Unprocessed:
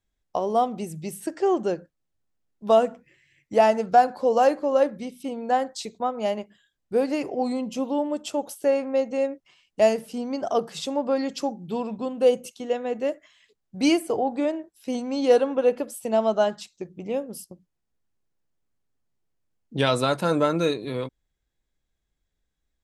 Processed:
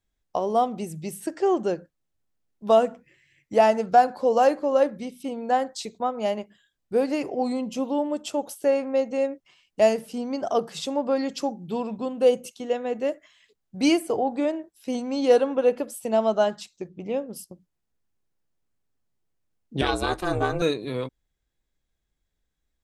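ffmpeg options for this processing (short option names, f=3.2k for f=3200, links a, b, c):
-filter_complex "[0:a]asettb=1/sr,asplit=3[a][b][c];[a]atrim=end=16.884[d];[b]atrim=start=16.88:end=17.36,asetpts=PTS-STARTPTS,afade=t=in:d=0.004:c=qsin,afade=t=out:st=0.476:d=0.004:c=qsin,lowpass=5.8k[e];[c]atrim=start=17.356[f];[d][e]acrossfade=d=0.004:c1=hsin:c2=qsin[g];[g][f]acrossfade=d=0.004:c1=qsin:c2=hsin,asettb=1/sr,asplit=3[h][i][j];[h]atrim=end=19.814[k];[i]atrim=start=19.81:end=20.62,asetpts=PTS-STARTPTS,afade=t=in:d=0.004:c=qsin,afade=t=out:st=0.806:d=0.004:c=qsin,aeval=exprs='val(0)*sin(2*PI*180*n/s)':c=same[l];[j]atrim=start=20.616[m];[k][l]acrossfade=d=0.004:c1=hsin:c2=qsin[n];[n][m]acrossfade=d=0.004:c1=qsin:c2=hsin"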